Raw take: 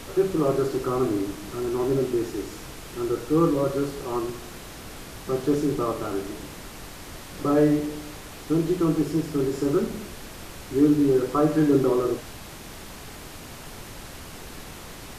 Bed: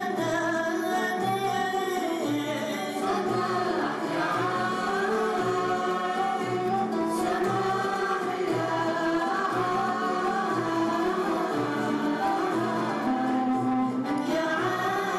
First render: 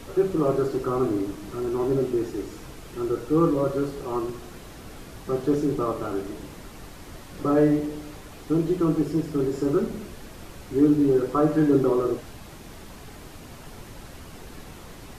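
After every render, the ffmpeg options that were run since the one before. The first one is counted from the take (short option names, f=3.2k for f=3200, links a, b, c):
-af "afftdn=nr=6:nf=-41"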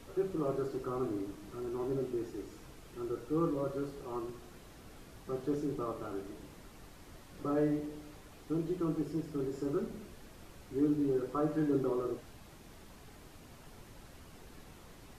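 -af "volume=-11.5dB"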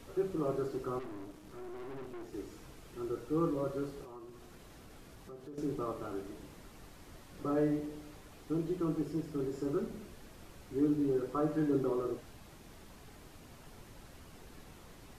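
-filter_complex "[0:a]asettb=1/sr,asplit=3[a][b][c];[a]atrim=end=0.994[d];[b]atrim=start=0.99:end=2.33,asetpts=PTS-STARTPTS,afade=t=in:d=0.004:c=qsin,afade=t=out:st=1.336:d=0.004:c=qsin,aeval=exprs='(tanh(141*val(0)+0.7)-tanh(0.7))/141':c=same[e];[c]atrim=start=2.326[f];[d][e]acrossfade=d=0.004:c1=hsin:c2=qsin[g];[g][f]acrossfade=d=0.004:c1=qsin:c2=hsin,asettb=1/sr,asplit=3[h][i][j];[h]atrim=end=4.044[k];[i]atrim=start=4.04:end=5.58,asetpts=PTS-STARTPTS,afade=t=in:d=0.004:c=qsin,afade=t=out:st=1.536:d=0.004:c=qsin,acompressor=threshold=-49dB:ratio=3:attack=3.2:release=140:knee=1:detection=peak[l];[j]atrim=start=5.576[m];[k][l]acrossfade=d=0.004:c1=hsin:c2=qsin[n];[n][m]acrossfade=d=0.004:c1=qsin:c2=hsin"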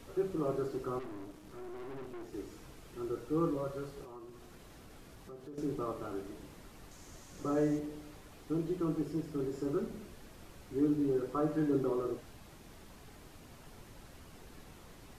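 -filter_complex "[0:a]asettb=1/sr,asplit=3[a][b][c];[a]atrim=end=3.574[d];[b]atrim=start=3.57:end=3.97,asetpts=PTS-STARTPTS,afade=t=in:d=0.004:c=qsin,afade=t=out:st=0.396:d=0.004:c=qsin,equalizer=f=300:w=1.7:g=-8[e];[c]atrim=start=3.966[f];[d][e]acrossfade=d=0.004:c1=hsin:c2=qsin[g];[g][f]acrossfade=d=0.004:c1=qsin:c2=hsin,asettb=1/sr,asplit=3[h][i][j];[h]atrim=end=6.914[k];[i]atrim=start=6.91:end=7.79,asetpts=PTS-STARTPTS,afade=t=in:d=0.004:c=qsin,afade=t=out:st=0.876:d=0.004:c=qsin,equalizer=f=6.6k:w=2.2:g=11[l];[j]atrim=start=7.786[m];[k][l]acrossfade=d=0.004:c1=hsin:c2=qsin[n];[n][m]acrossfade=d=0.004:c1=qsin:c2=hsin"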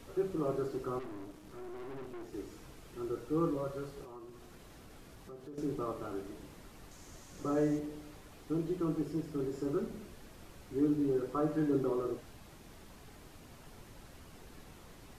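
-af anull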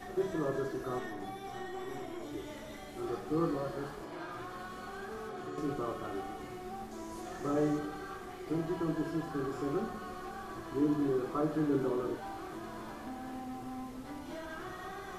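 -filter_complex "[1:a]volume=-17dB[a];[0:a][a]amix=inputs=2:normalize=0"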